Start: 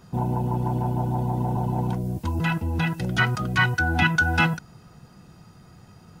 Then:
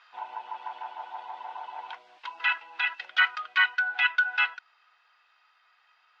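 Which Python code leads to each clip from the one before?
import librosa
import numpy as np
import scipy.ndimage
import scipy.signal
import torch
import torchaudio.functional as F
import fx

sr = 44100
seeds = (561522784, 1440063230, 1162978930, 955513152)

y = scipy.signal.sosfilt(scipy.signal.bessel(4, 1700.0, 'highpass', norm='mag', fs=sr, output='sos'), x)
y = fx.rider(y, sr, range_db=4, speed_s=2.0)
y = scipy.signal.sosfilt(scipy.signal.butter(4, 3400.0, 'lowpass', fs=sr, output='sos'), y)
y = y * 10.0 ** (3.5 / 20.0)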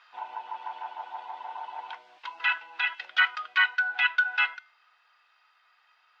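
y = fx.comb_fb(x, sr, f0_hz=300.0, decay_s=0.49, harmonics='all', damping=0.0, mix_pct=50)
y = y * 10.0 ** (5.5 / 20.0)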